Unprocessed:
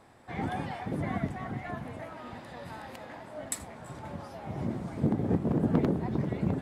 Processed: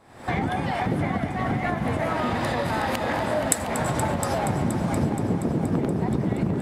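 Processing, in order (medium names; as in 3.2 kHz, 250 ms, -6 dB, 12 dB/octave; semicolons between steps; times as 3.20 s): recorder AGC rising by 74 dB/s; multi-head delay 237 ms, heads all three, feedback 58%, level -14 dB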